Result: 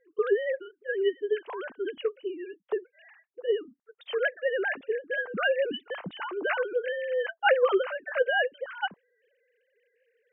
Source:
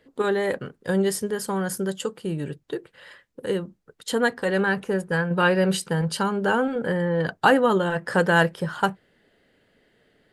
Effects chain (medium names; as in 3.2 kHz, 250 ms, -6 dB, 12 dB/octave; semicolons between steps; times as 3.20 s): formants replaced by sine waves; trim -5.5 dB